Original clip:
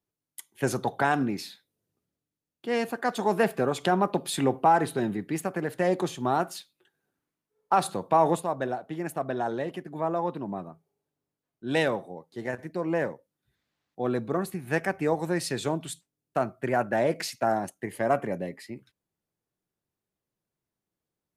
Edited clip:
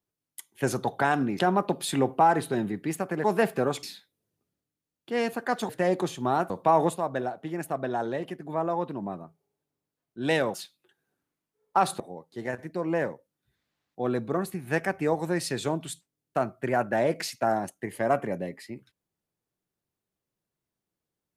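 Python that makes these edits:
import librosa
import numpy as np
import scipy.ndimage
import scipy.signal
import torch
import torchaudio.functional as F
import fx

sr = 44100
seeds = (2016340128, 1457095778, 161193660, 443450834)

y = fx.edit(x, sr, fx.swap(start_s=1.39, length_s=1.86, other_s=3.84, other_length_s=1.85),
    fx.move(start_s=6.5, length_s=1.46, to_s=12.0), tone=tone)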